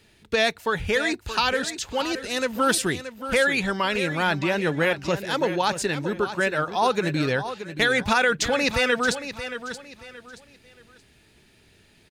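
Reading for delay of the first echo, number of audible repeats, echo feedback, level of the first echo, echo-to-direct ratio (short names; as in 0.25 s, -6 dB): 0.626 s, 3, 30%, -11.0 dB, -10.5 dB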